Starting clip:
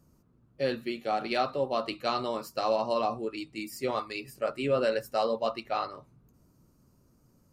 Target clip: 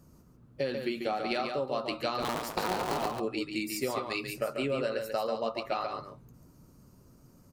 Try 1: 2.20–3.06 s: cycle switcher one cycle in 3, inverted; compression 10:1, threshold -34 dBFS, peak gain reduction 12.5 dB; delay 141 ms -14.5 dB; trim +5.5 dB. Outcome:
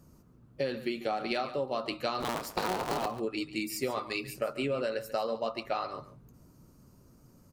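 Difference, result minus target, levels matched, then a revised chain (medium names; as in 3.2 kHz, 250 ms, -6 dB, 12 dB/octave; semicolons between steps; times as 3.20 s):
echo-to-direct -8.5 dB
2.20–3.06 s: cycle switcher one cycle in 3, inverted; compression 10:1, threshold -34 dBFS, peak gain reduction 12.5 dB; delay 141 ms -6 dB; trim +5.5 dB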